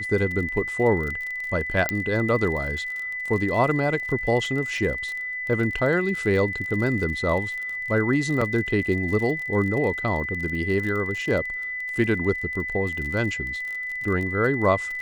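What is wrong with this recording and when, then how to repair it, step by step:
crackle 37 per s -30 dBFS
whine 2 kHz -28 dBFS
1.89 s: pop -7 dBFS
8.41 s: dropout 4.7 ms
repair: de-click; band-stop 2 kHz, Q 30; interpolate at 8.41 s, 4.7 ms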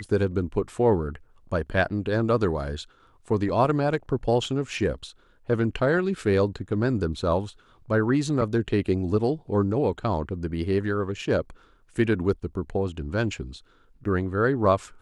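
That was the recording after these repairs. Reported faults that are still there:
nothing left

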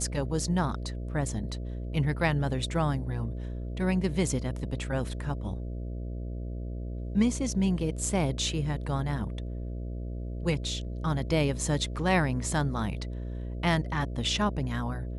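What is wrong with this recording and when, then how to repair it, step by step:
buzz 60 Hz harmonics 11 -35 dBFS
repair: de-hum 60 Hz, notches 11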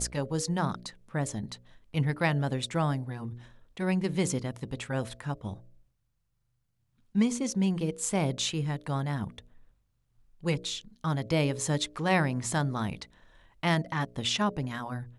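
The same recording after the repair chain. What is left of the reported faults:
nothing left

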